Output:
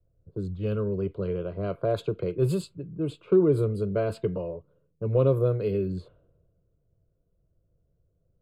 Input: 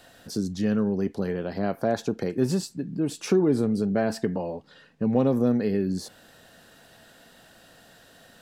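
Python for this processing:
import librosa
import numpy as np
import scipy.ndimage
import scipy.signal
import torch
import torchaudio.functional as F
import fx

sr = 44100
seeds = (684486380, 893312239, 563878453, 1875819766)

y = fx.env_lowpass(x, sr, base_hz=320.0, full_db=-20.0)
y = fx.low_shelf(y, sr, hz=250.0, db=11.5)
y = fx.fixed_phaser(y, sr, hz=1200.0, stages=8)
y = fx.band_widen(y, sr, depth_pct=40)
y = F.gain(torch.from_numpy(y), -1.5).numpy()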